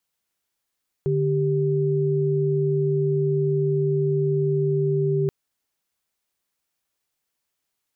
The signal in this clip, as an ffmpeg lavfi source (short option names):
-f lavfi -i "aevalsrc='0.0841*(sin(2*PI*146.83*t)+sin(2*PI*392*t))':d=4.23:s=44100"